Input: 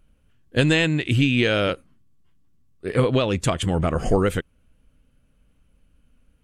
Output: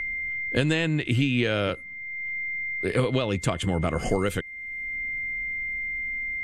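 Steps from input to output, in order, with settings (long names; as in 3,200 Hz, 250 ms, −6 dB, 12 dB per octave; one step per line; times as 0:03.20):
steady tone 2,100 Hz −37 dBFS
multiband upward and downward compressor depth 70%
level −4 dB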